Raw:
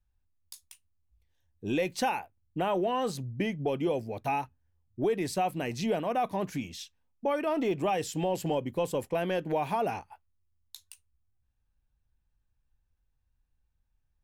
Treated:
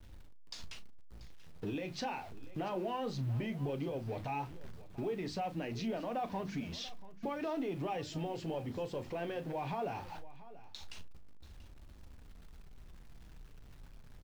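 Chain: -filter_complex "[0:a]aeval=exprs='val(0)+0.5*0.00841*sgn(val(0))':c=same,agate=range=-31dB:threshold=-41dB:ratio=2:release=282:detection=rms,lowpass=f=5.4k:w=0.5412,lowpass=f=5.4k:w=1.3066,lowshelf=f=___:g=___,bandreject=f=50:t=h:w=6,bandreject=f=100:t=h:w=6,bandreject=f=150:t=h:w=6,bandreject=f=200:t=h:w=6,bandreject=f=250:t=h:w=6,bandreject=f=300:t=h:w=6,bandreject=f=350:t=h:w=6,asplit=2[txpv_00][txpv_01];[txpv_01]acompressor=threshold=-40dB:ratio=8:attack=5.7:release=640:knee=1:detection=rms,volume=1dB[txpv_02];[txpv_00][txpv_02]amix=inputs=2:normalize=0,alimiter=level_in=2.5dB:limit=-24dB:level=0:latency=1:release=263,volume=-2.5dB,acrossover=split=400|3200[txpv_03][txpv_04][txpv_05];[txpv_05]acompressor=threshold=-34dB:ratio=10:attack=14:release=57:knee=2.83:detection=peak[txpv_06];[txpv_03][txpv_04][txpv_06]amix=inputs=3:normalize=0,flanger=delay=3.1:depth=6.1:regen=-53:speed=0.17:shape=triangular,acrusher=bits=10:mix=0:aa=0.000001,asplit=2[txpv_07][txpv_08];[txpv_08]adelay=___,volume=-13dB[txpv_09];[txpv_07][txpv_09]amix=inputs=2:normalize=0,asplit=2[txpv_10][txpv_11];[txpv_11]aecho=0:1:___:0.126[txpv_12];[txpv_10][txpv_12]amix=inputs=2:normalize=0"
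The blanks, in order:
210, 5.5, 35, 686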